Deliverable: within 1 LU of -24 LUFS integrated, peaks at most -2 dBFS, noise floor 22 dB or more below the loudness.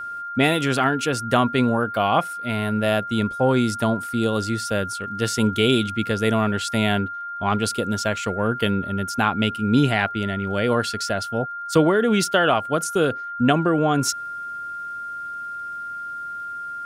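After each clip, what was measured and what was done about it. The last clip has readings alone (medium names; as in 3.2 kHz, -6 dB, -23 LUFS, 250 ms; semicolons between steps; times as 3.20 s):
tick rate 31 per s; steady tone 1.4 kHz; tone level -29 dBFS; loudness -22.5 LUFS; peak level -5.5 dBFS; loudness target -24.0 LUFS
-> de-click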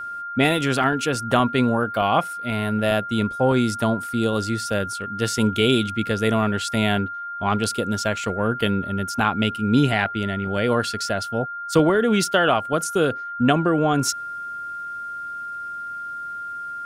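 tick rate 0.059 per s; steady tone 1.4 kHz; tone level -29 dBFS
-> band-stop 1.4 kHz, Q 30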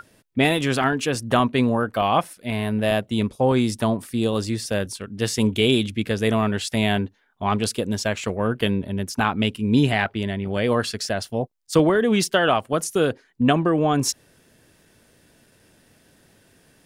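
steady tone not found; loudness -22.5 LUFS; peak level -6.0 dBFS; loudness target -24.0 LUFS
-> trim -1.5 dB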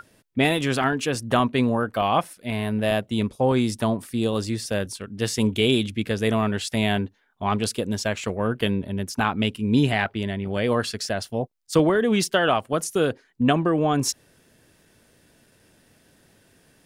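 loudness -24.0 LUFS; peak level -7.5 dBFS; noise floor -61 dBFS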